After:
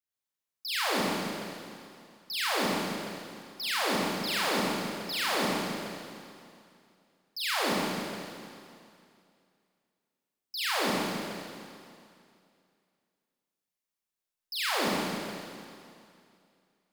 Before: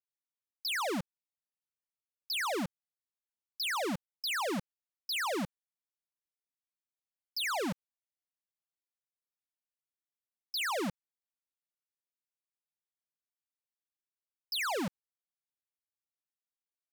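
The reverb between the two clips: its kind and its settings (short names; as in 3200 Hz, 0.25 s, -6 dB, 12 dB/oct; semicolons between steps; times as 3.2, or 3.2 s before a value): Schroeder reverb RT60 2.4 s, combs from 29 ms, DRR -7.5 dB; gain -2.5 dB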